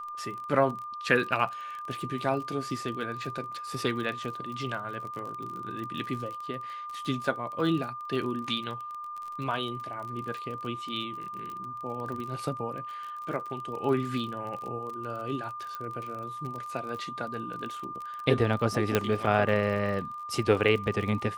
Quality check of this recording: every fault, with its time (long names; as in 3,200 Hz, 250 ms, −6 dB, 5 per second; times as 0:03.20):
surface crackle 34 per second −35 dBFS
whistle 1,200 Hz −36 dBFS
0:15.75: click −23 dBFS
0:18.95: click −9 dBFS